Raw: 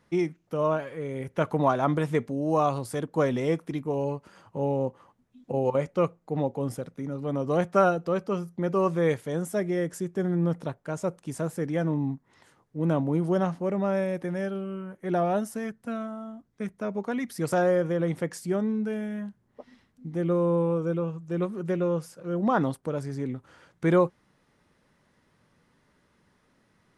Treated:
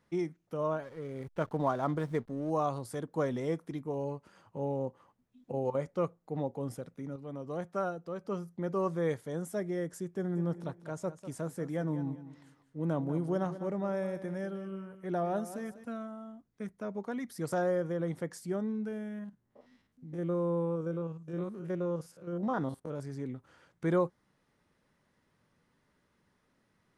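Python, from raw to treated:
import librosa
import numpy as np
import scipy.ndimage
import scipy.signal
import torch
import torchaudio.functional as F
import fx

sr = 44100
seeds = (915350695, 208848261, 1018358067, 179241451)

y = fx.backlash(x, sr, play_db=-41.0, at=(0.83, 2.5))
y = fx.echo_feedback(y, sr, ms=197, feedback_pct=26, wet_db=-13.0, at=(10.34, 15.83), fade=0.02)
y = fx.spec_steps(y, sr, hold_ms=50, at=(18.88, 23.0))
y = fx.edit(y, sr, fx.clip_gain(start_s=7.16, length_s=1.09, db=-5.5), tone=tone)
y = fx.dynamic_eq(y, sr, hz=2600.0, q=2.9, threshold_db=-55.0, ratio=4.0, max_db=-7)
y = y * 10.0 ** (-7.0 / 20.0)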